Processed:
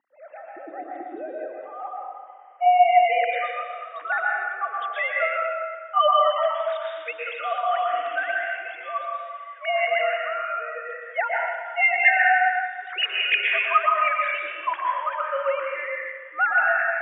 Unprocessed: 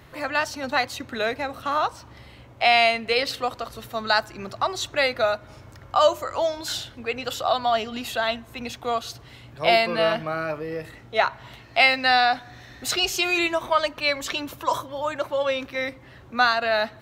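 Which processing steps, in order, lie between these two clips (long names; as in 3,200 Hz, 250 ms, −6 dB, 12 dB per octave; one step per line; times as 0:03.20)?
three sine waves on the formant tracks
mains-hum notches 60/120/180/240/300 Hz
band-pass filter sweep 270 Hz → 1,700 Hz, 0:01.62–0:03.05
dense smooth reverb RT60 1.6 s, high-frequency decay 0.8×, pre-delay 105 ms, DRR −3 dB
level +6 dB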